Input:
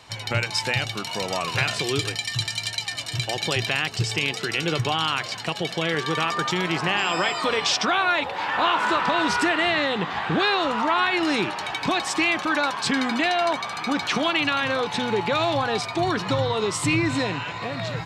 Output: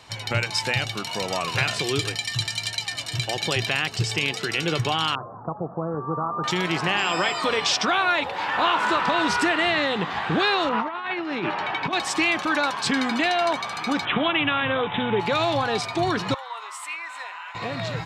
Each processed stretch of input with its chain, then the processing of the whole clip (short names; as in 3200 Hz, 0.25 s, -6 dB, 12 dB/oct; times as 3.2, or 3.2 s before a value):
5.15–6.44 steep low-pass 1300 Hz 72 dB/oct + dynamic EQ 400 Hz, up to -4 dB, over -39 dBFS
10.69–11.93 doubler 12 ms -12.5 dB + negative-ratio compressor -25 dBFS, ratio -0.5 + BPF 120–2700 Hz
14.05–15.2 low shelf 120 Hz +6.5 dB + careless resampling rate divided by 6×, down none, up filtered
16.34–17.55 HPF 940 Hz 24 dB/oct + bell 4900 Hz -15 dB 2 oct
whole clip: dry